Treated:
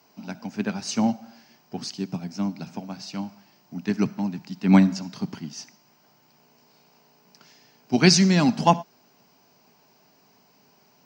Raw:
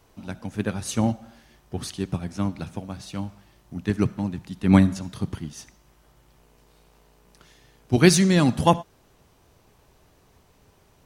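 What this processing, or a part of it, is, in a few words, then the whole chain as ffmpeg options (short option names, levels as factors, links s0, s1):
old television with a line whistle: -filter_complex "[0:a]highpass=f=180:w=0.5412,highpass=f=180:w=1.3066,equalizer=f=340:t=q:w=4:g=-8,equalizer=f=510:t=q:w=4:g=-9,equalizer=f=1200:t=q:w=4:g=-6,equalizer=f=1800:t=q:w=4:g=-5,equalizer=f=3500:t=q:w=4:g=-9,equalizer=f=5000:t=q:w=4:g=7,lowpass=f=6500:w=0.5412,lowpass=f=6500:w=1.3066,aeval=exprs='val(0)+0.00251*sin(2*PI*15625*n/s)':c=same,lowpass=9800,asettb=1/sr,asplit=3[s0][s1][s2];[s0]atrim=end=1.804[s3];[s1]atrim=start=1.8:end=2.68,asetpts=PTS-STARTPTS,afade=t=in:d=0.004:c=qsin,afade=t=out:st=0.876:d=0.004:c=qsin,equalizer=f=1500:t=o:w=2.8:g=-4.5[s4];[s2]atrim=start=2.676[s5];[s3][s4]acrossfade=d=0.004:c1=hsin:c2=qsin[s6];[s6][s5]acrossfade=d=0.004:c1=qsin:c2=hsin,volume=1.5"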